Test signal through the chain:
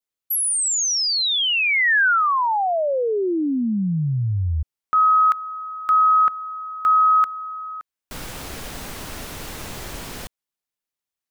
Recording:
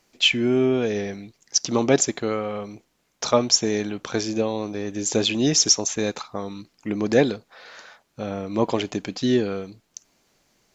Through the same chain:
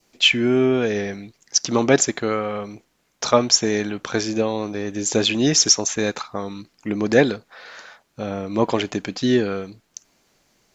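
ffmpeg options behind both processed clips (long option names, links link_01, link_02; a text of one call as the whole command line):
ffmpeg -i in.wav -af "adynamicequalizer=threshold=0.0126:dfrequency=1600:dqfactor=1.5:tfrequency=1600:tqfactor=1.5:attack=5:release=100:ratio=0.375:range=2.5:mode=boostabove:tftype=bell,volume=2dB" out.wav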